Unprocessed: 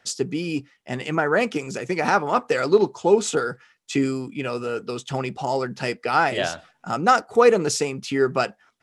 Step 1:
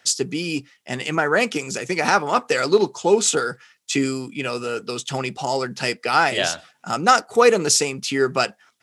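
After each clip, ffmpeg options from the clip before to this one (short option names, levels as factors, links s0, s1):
-af "highpass=86,highshelf=f=2400:g=10"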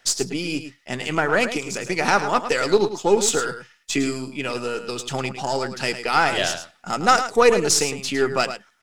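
-af "aeval=exprs='if(lt(val(0),0),0.708*val(0),val(0))':c=same,aecho=1:1:107:0.299"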